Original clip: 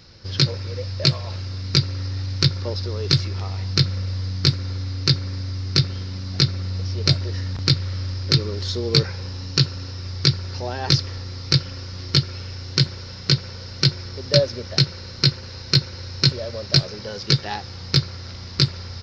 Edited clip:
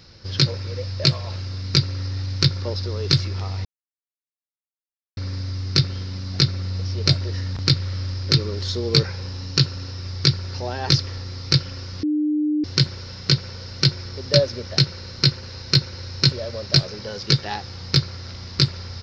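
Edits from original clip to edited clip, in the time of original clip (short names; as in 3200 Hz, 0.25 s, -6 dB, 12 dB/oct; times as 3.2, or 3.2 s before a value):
3.65–5.17 mute
12.03–12.64 bleep 301 Hz -18 dBFS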